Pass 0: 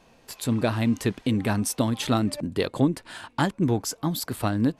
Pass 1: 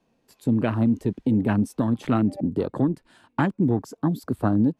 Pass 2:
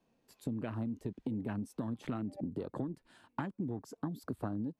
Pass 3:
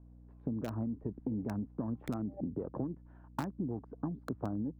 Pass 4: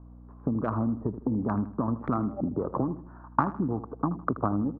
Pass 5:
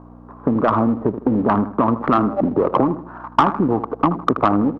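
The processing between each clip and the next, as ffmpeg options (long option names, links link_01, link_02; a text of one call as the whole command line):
ffmpeg -i in.wav -filter_complex "[0:a]afwtdn=0.0251,equalizer=frequency=250:width_type=o:width=2.1:gain=9,acrossover=split=100|900|6900[link_01][link_02][link_03][link_04];[link_02]alimiter=limit=-14dB:level=0:latency=1:release=276[link_05];[link_01][link_05][link_03][link_04]amix=inputs=4:normalize=0" out.wav
ffmpeg -i in.wav -af "acompressor=threshold=-28dB:ratio=6,volume=-6.5dB" out.wav
ffmpeg -i in.wav -filter_complex "[0:a]aeval=exprs='val(0)+0.00178*(sin(2*PI*60*n/s)+sin(2*PI*2*60*n/s)/2+sin(2*PI*3*60*n/s)/3+sin(2*PI*4*60*n/s)/4+sin(2*PI*5*60*n/s)/5)':channel_layout=same,acrossover=split=1400[link_01][link_02];[link_02]acrusher=bits=6:mix=0:aa=0.000001[link_03];[link_01][link_03]amix=inputs=2:normalize=0,volume=1dB" out.wav
ffmpeg -i in.wav -af "lowpass=frequency=1200:width_type=q:width=4.8,aecho=1:1:79|158|237|316:0.2|0.0778|0.0303|0.0118,volume=7.5dB" out.wav
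ffmpeg -i in.wav -filter_complex "[0:a]aeval=exprs='if(lt(val(0),0),0.708*val(0),val(0))':channel_layout=same,asplit=2[link_01][link_02];[link_02]highpass=frequency=720:poles=1,volume=21dB,asoftclip=type=tanh:threshold=-6.5dB[link_03];[link_01][link_03]amix=inputs=2:normalize=0,lowpass=frequency=1800:poles=1,volume=-6dB,volume=6dB" out.wav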